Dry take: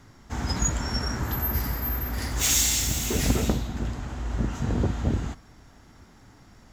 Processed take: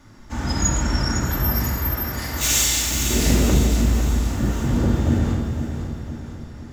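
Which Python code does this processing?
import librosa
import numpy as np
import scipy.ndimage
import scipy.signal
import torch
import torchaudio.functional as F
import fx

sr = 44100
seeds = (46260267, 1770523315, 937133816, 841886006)

y = fx.low_shelf(x, sr, hz=180.0, db=-11.5, at=(1.65, 2.95))
y = fx.echo_feedback(y, sr, ms=506, feedback_pct=51, wet_db=-9.0)
y = fx.room_shoebox(y, sr, seeds[0], volume_m3=1300.0, walls='mixed', distance_m=2.5)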